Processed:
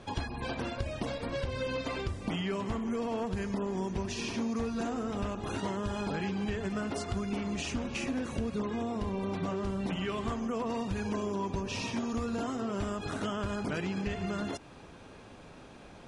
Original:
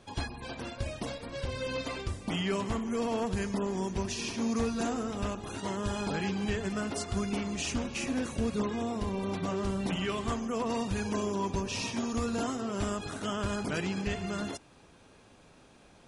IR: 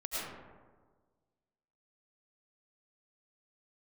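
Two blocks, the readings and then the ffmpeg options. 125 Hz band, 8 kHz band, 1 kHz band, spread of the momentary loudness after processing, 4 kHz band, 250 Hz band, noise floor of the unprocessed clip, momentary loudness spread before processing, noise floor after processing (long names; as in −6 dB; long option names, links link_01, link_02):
−0.5 dB, −6.0 dB, −1.0 dB, 3 LU, −3.0 dB, −1.0 dB, −58 dBFS, 6 LU, −51 dBFS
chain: -af "acompressor=threshold=-38dB:ratio=6,aemphasis=mode=reproduction:type=cd,volume=7dB"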